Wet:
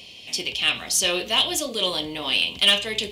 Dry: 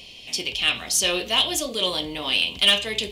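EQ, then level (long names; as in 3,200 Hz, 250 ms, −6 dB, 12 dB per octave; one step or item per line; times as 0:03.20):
high-pass filter 69 Hz
0.0 dB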